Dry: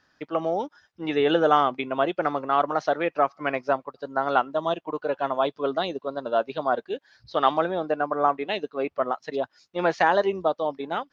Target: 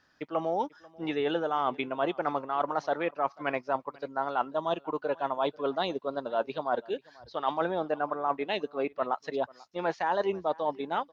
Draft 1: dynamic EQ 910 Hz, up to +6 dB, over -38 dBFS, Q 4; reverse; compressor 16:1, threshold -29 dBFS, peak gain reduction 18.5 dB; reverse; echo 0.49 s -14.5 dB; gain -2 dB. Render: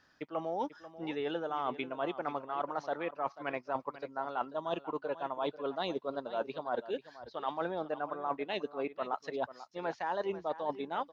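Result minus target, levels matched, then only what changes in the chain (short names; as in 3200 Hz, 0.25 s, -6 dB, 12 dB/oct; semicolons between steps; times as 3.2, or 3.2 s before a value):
compressor: peak gain reduction +6.5 dB; echo-to-direct +9 dB
change: compressor 16:1, threshold -22 dBFS, peak gain reduction 12 dB; change: echo 0.49 s -23.5 dB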